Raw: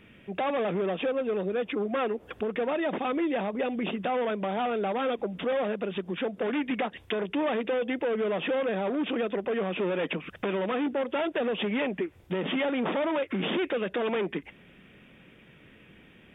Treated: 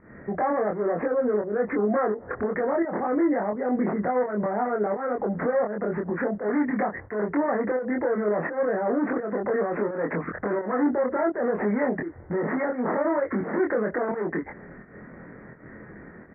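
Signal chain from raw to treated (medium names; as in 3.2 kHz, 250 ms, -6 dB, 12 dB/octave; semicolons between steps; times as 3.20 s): steep low-pass 2 kHz 96 dB/octave; peaking EQ 800 Hz +4 dB 2.9 oct; peak limiter -28 dBFS, peak gain reduction 11 dB; volume shaper 85 bpm, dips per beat 1, -14 dB, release 213 ms; doubling 24 ms -2.5 dB; trim +7.5 dB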